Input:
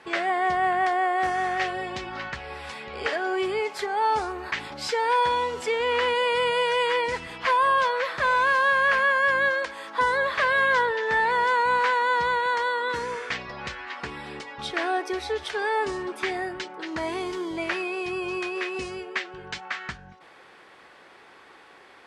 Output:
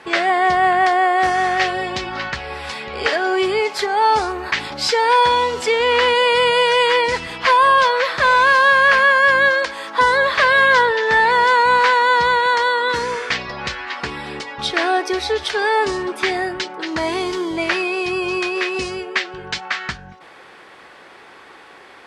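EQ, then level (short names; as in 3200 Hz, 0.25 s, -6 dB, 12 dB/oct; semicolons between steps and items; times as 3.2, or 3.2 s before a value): dynamic EQ 4600 Hz, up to +5 dB, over -47 dBFS, Q 1.3; +8.0 dB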